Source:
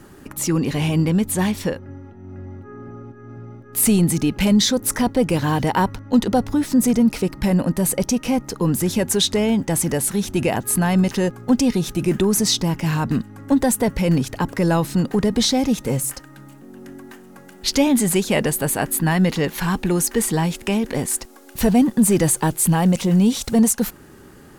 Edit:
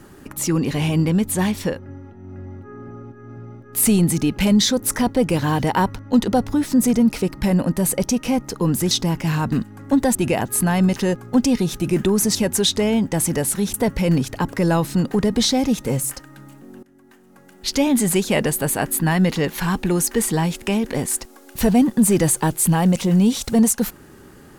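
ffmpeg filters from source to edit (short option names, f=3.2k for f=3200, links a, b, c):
-filter_complex "[0:a]asplit=6[a][b][c][d][e][f];[a]atrim=end=8.912[g];[b]atrim=start=12.498:end=13.742[h];[c]atrim=start=10.298:end=12.502[i];[d]atrim=start=8.908:end=10.302[j];[e]atrim=start=13.738:end=16.83,asetpts=PTS-STARTPTS,afade=t=out:st=3.088:d=0.004:c=hsin:silence=0.0944061[k];[f]atrim=start=16.83,asetpts=PTS-STARTPTS,afade=t=in:d=1.21:silence=0.0944061[l];[g][h]acrossfade=d=0.004:c1=hsin:c2=hsin[m];[m][i]acrossfade=d=0.004:c1=hsin:c2=hsin[n];[n][j]acrossfade=d=0.004:c1=hsin:c2=hsin[o];[k][l]concat=n=2:v=0:a=1[p];[o][p]acrossfade=d=0.004:c1=hsin:c2=hsin"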